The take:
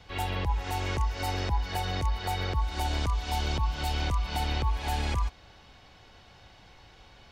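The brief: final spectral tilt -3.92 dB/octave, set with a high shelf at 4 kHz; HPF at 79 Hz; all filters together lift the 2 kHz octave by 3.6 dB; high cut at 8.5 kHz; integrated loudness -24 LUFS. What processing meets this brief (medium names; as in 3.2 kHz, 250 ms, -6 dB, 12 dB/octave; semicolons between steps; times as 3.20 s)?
high-pass 79 Hz; low-pass 8.5 kHz; peaking EQ 2 kHz +3.5 dB; treble shelf 4 kHz +4 dB; trim +7.5 dB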